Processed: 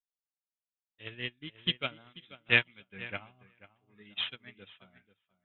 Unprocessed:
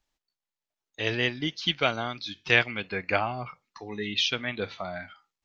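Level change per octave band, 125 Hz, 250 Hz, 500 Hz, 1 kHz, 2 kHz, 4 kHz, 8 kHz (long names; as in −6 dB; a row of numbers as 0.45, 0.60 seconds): −8.5 dB, −11.0 dB, −13.0 dB, −15.0 dB, −5.0 dB, −6.5 dB, can't be measured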